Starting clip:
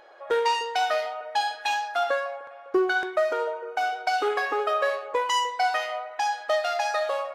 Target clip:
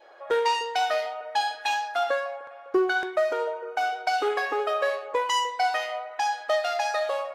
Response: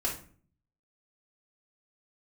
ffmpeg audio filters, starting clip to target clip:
-af "adynamicequalizer=threshold=0.01:dfrequency=1300:dqfactor=2.7:tfrequency=1300:tqfactor=2.7:attack=5:release=100:ratio=0.375:range=2:mode=cutabove:tftype=bell"

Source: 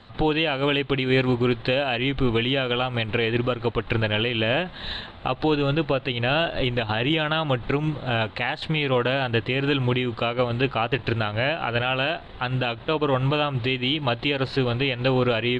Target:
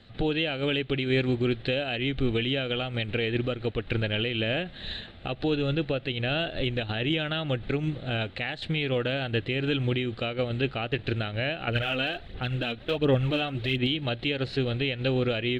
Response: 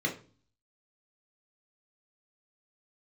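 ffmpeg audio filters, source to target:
-filter_complex "[0:a]equalizer=f=1k:w=2.2:g=-15,asettb=1/sr,asplit=3[a][b][c];[a]atrim=end=11.674[d];[b]atrim=start=11.67:end=13.87,asetpts=PTS-STARTPTS,afade=t=in:d=0.004:c=qsin,afade=t=out:st=2.196:d=0.004:c=qsin,aphaser=in_gain=1:out_gain=1:delay=4.2:decay=0.52:speed=1.4:type=sinusoidal[e];[c]atrim=start=13.866[f];[d][e]acrossfade=d=0.004:c1=hsin:c2=qsin[g];[g][f]acrossfade=d=0.004:c1=qsin:c2=hsin,volume=-3.5dB"

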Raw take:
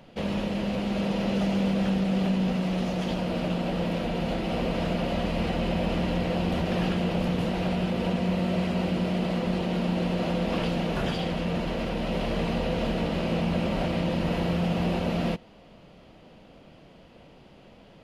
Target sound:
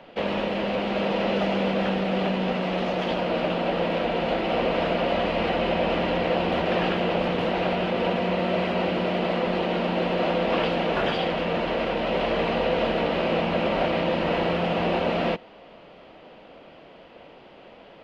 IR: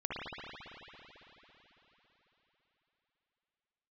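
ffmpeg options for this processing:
-filter_complex "[0:a]acrossover=split=310 4000:gain=0.2 1 0.1[a][b][c];[a][b][c]amix=inputs=3:normalize=0,volume=7.5dB"

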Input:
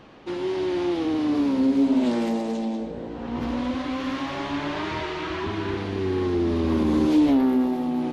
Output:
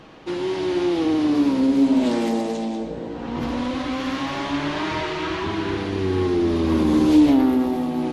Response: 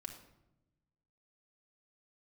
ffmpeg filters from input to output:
-filter_complex "[0:a]asplit=2[a][b];[1:a]atrim=start_sample=2205,asetrate=23814,aresample=44100,highshelf=f=4k:g=11[c];[b][c]afir=irnorm=-1:irlink=0,volume=-6dB[d];[a][d]amix=inputs=2:normalize=0"

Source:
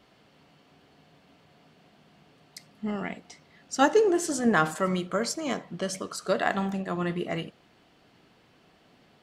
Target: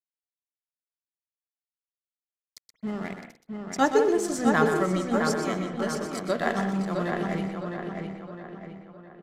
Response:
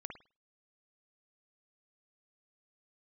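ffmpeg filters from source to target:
-filter_complex "[0:a]equalizer=f=170:t=o:w=1.4:g=2.5,bandreject=f=2.8k:w=8.6,aeval=exprs='sgn(val(0))*max(abs(val(0))-0.00794,0)':c=same,asplit=2[a][b];[b]adelay=660,lowpass=f=3.5k:p=1,volume=-4.5dB,asplit=2[c][d];[d]adelay=660,lowpass=f=3.5k:p=1,volume=0.46,asplit=2[e][f];[f]adelay=660,lowpass=f=3.5k:p=1,volume=0.46,asplit=2[g][h];[h]adelay=660,lowpass=f=3.5k:p=1,volume=0.46,asplit=2[i][j];[j]adelay=660,lowpass=f=3.5k:p=1,volume=0.46,asplit=2[k][l];[l]adelay=660,lowpass=f=3.5k:p=1,volume=0.46[m];[a][c][e][g][i][k][m]amix=inputs=7:normalize=0,asplit=2[n][o];[1:a]atrim=start_sample=2205,adelay=124[p];[o][p]afir=irnorm=-1:irlink=0,volume=-3.5dB[q];[n][q]amix=inputs=2:normalize=0,aresample=32000,aresample=44100,volume=-1dB"

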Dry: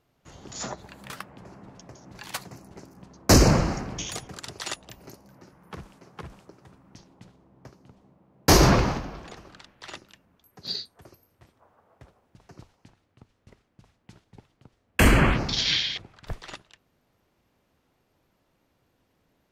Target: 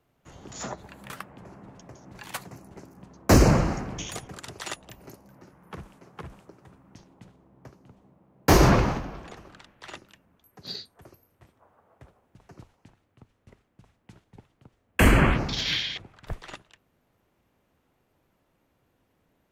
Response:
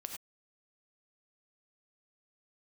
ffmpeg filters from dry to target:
-filter_complex "[0:a]equalizer=f=4.8k:t=o:w=0.97:g=-5.5,acrossover=split=140|3800[a][b][c];[c]asoftclip=type=tanh:threshold=-25.5dB[d];[a][b][d]amix=inputs=3:normalize=0"

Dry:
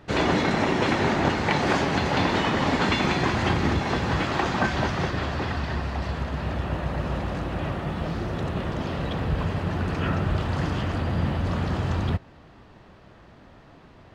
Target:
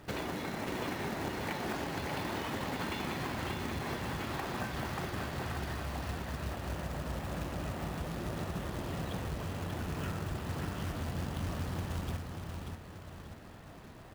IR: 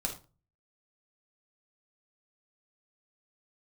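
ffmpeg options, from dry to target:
-filter_complex "[0:a]acompressor=threshold=-33dB:ratio=5,asplit=2[a][b];[b]aecho=0:1:586|1172|1758|2344|2930:0.562|0.242|0.104|0.0447|0.0192[c];[a][c]amix=inputs=2:normalize=0,acrusher=bits=3:mode=log:mix=0:aa=0.000001,volume=-3.5dB"

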